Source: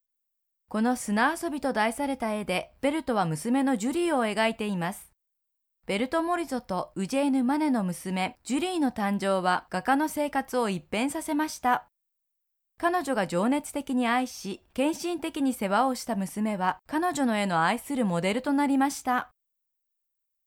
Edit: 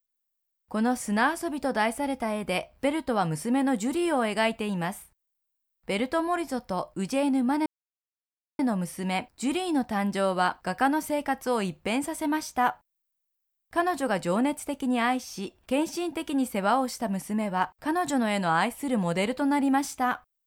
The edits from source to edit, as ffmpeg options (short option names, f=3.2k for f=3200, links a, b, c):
-filter_complex "[0:a]asplit=2[a][b];[a]atrim=end=7.66,asetpts=PTS-STARTPTS,afade=t=out:st=7.656:d=0.004:c=hsin,apad=pad_dur=0.93[c];[b]atrim=start=7.66,asetpts=PTS-STARTPTS,afade=t=in:d=0.004:c=hsin[d];[c][d]concat=n=2:v=0:a=1"